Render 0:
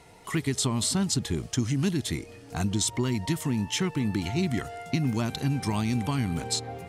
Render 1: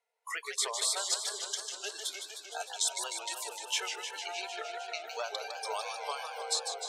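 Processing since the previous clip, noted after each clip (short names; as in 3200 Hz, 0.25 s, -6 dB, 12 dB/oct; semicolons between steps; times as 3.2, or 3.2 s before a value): spectral noise reduction 29 dB; rippled Chebyshev high-pass 430 Hz, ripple 3 dB; warbling echo 0.153 s, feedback 77%, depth 188 cents, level -7 dB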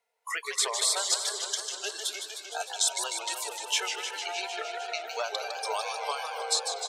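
speakerphone echo 0.24 s, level -13 dB; gain +4.5 dB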